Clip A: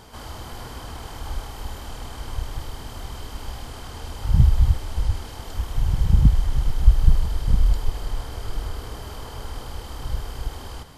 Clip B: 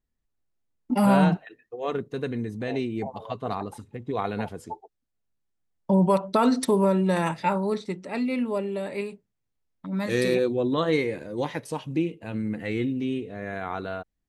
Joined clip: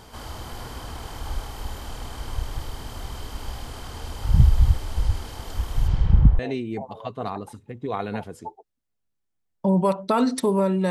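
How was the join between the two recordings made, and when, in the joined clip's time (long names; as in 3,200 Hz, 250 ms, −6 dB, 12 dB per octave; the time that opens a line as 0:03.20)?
clip A
0:05.87–0:06.39: low-pass filter 6,300 Hz → 1,000 Hz
0:06.39: continue with clip B from 0:02.64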